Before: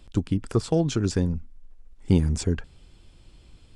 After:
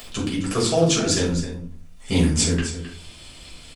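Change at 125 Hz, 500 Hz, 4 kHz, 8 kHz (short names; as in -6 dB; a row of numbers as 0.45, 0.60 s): +0.5, +5.5, +13.5, +14.0 dB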